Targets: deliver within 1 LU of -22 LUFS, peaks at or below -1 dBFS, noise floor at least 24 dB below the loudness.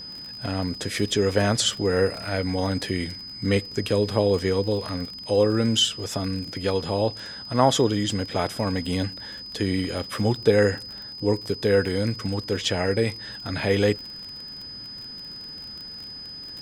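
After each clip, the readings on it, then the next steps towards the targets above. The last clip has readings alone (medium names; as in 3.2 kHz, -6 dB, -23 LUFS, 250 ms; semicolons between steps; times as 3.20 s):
tick rate 33 per s; steady tone 5 kHz; tone level -36 dBFS; loudness -24.5 LUFS; peak level -4.0 dBFS; loudness target -22.0 LUFS
-> de-click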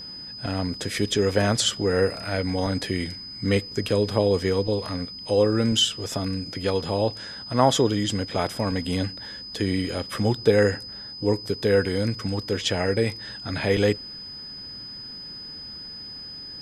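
tick rate 0 per s; steady tone 5 kHz; tone level -36 dBFS
-> band-stop 5 kHz, Q 30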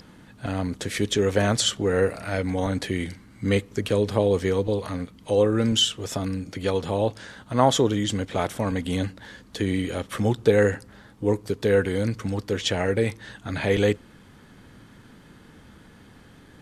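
steady tone not found; loudness -24.5 LUFS; peak level -4.0 dBFS; loudness target -22.0 LUFS
-> trim +2.5 dB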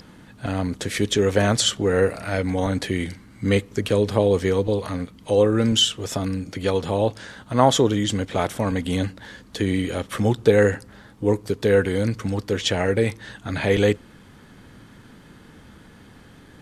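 loudness -22.0 LUFS; peak level -1.5 dBFS; noise floor -49 dBFS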